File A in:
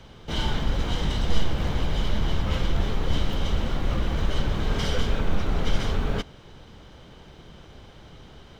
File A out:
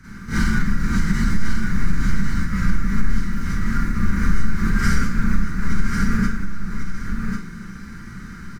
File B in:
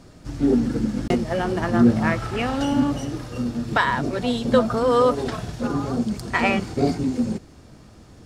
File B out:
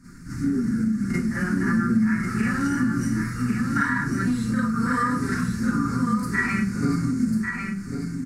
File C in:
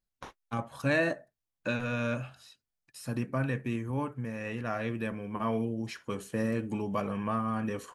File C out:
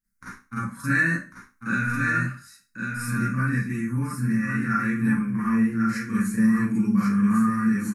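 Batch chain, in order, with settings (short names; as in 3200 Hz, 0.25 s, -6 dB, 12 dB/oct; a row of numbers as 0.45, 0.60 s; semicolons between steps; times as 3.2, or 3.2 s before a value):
EQ curve 110 Hz 0 dB, 170 Hz +4 dB, 240 Hz +4 dB, 660 Hz -27 dB, 1400 Hz +6 dB, 2100 Hz +2 dB, 3200 Hz -21 dB, 4500 Hz -3 dB, 10000 Hz +10 dB; Schroeder reverb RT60 0.31 s, combs from 32 ms, DRR -9.5 dB; compressor, threshold -14 dBFS; high shelf 9100 Hz -9 dB; on a send: echo 1.096 s -5.5 dB; on the sum: match loudness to -24 LUFS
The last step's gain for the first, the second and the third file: +1.0, -6.5, -2.0 dB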